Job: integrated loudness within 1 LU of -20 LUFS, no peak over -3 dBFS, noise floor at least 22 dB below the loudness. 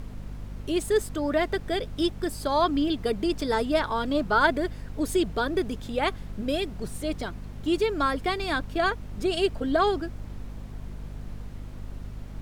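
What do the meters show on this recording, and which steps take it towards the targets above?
hum 50 Hz; harmonics up to 250 Hz; hum level -36 dBFS; noise floor -40 dBFS; noise floor target -49 dBFS; loudness -27.0 LUFS; peak -9.0 dBFS; loudness target -20.0 LUFS
-> de-hum 50 Hz, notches 5; noise print and reduce 9 dB; gain +7 dB; limiter -3 dBFS

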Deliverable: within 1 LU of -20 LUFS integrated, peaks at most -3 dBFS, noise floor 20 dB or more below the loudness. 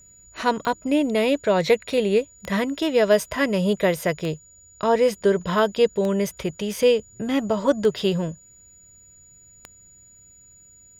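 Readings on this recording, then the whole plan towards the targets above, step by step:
clicks 6; steady tone 6900 Hz; tone level -49 dBFS; loudness -22.5 LUFS; peak -6.5 dBFS; loudness target -20.0 LUFS
-> de-click; notch 6900 Hz, Q 30; gain +2.5 dB

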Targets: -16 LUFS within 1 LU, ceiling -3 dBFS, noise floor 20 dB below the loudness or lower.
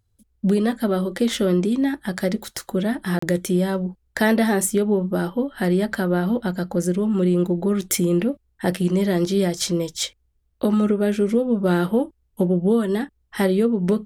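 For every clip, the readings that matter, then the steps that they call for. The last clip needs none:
dropouts 1; longest dropout 34 ms; loudness -22.0 LUFS; peak -6.5 dBFS; loudness target -16.0 LUFS
-> interpolate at 3.19, 34 ms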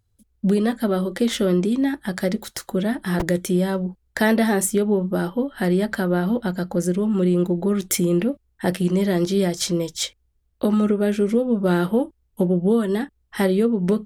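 dropouts 0; loudness -22.0 LUFS; peak -6.5 dBFS; loudness target -16.0 LUFS
-> gain +6 dB; limiter -3 dBFS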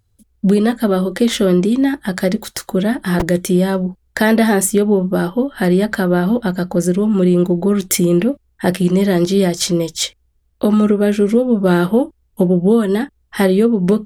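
loudness -16.0 LUFS; peak -3.0 dBFS; noise floor -61 dBFS

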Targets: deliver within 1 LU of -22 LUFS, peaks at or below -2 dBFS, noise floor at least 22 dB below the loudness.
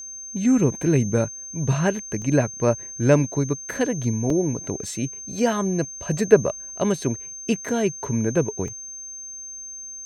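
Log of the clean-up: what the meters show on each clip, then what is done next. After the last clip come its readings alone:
dropouts 6; longest dropout 2.3 ms; steady tone 6300 Hz; tone level -34 dBFS; loudness -23.0 LUFS; peak -2.0 dBFS; loudness target -22.0 LUFS
-> interpolate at 2.22/4.3/4.84/6.98/7.69/8.68, 2.3 ms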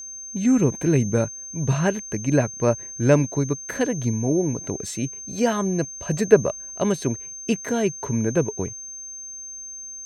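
dropouts 0; steady tone 6300 Hz; tone level -34 dBFS
-> notch 6300 Hz, Q 30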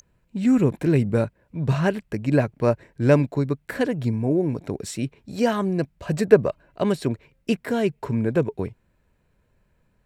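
steady tone none; loudness -23.5 LUFS; peak -2.0 dBFS; loudness target -22.0 LUFS
-> gain +1.5 dB; limiter -2 dBFS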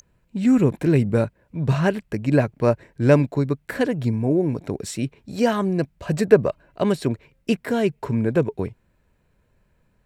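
loudness -22.0 LUFS; peak -2.0 dBFS; noise floor -65 dBFS

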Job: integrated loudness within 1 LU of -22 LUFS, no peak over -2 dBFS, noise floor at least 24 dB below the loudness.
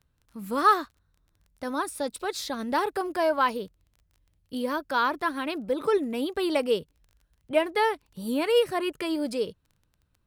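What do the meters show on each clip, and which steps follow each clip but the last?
ticks 16/s; loudness -27.5 LUFS; peak -9.5 dBFS; loudness target -22.0 LUFS
-> de-click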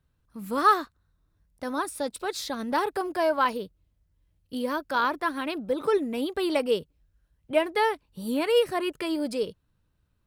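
ticks 0.58/s; loudness -27.5 LUFS; peak -9.5 dBFS; loudness target -22.0 LUFS
-> gain +5.5 dB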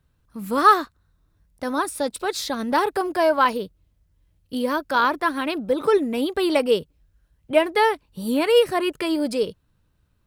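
loudness -22.0 LUFS; peak -4.0 dBFS; noise floor -66 dBFS

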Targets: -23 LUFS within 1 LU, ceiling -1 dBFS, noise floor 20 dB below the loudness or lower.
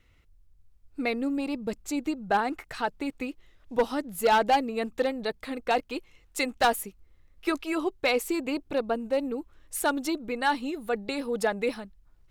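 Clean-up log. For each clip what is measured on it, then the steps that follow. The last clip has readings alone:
clipped 0.5%; flat tops at -16.5 dBFS; loudness -29.0 LUFS; peak -16.5 dBFS; loudness target -23.0 LUFS
-> clip repair -16.5 dBFS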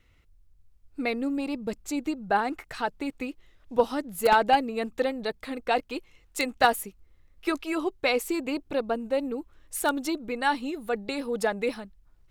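clipped 0.0%; loudness -28.5 LUFS; peak -7.5 dBFS; loudness target -23.0 LUFS
-> gain +5.5 dB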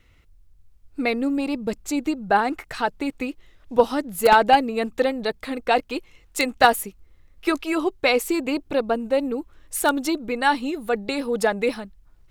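loudness -23.0 LUFS; peak -2.0 dBFS; noise floor -56 dBFS

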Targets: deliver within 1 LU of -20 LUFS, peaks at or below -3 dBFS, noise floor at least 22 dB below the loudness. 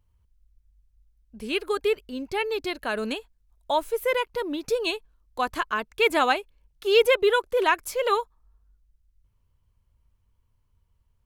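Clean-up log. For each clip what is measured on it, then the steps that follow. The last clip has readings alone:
loudness -25.5 LUFS; peak -7.0 dBFS; loudness target -20.0 LUFS
-> gain +5.5 dB; limiter -3 dBFS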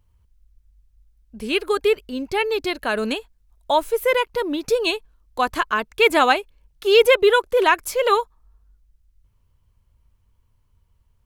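loudness -20.0 LUFS; peak -3.0 dBFS; noise floor -64 dBFS

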